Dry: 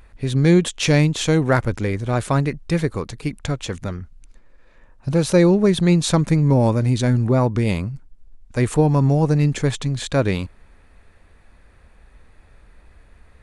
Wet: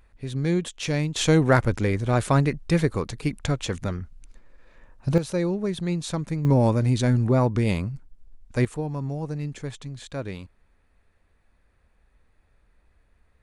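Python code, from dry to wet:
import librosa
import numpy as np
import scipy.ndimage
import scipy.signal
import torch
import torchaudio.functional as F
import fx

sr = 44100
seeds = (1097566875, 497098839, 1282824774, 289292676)

y = fx.gain(x, sr, db=fx.steps((0.0, -9.5), (1.16, -1.0), (5.18, -11.0), (6.45, -3.0), (8.65, -13.5)))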